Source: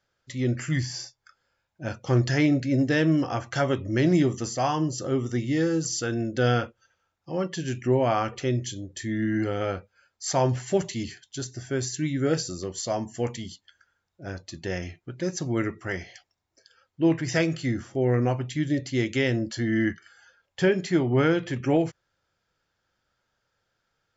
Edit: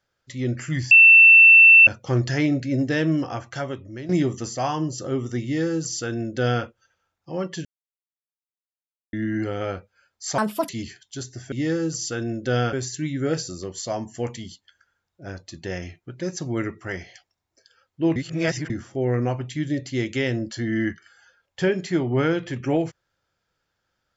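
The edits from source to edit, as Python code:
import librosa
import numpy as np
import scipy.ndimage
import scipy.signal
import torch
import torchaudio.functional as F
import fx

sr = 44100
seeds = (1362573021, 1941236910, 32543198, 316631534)

y = fx.edit(x, sr, fx.bleep(start_s=0.91, length_s=0.96, hz=2680.0, db=-7.0),
    fx.fade_out_to(start_s=3.16, length_s=0.93, floor_db=-16.0),
    fx.duplicate(start_s=5.43, length_s=1.21, to_s=11.73),
    fx.silence(start_s=7.65, length_s=1.48),
    fx.speed_span(start_s=10.38, length_s=0.52, speed=1.68),
    fx.reverse_span(start_s=17.16, length_s=0.54), tone=tone)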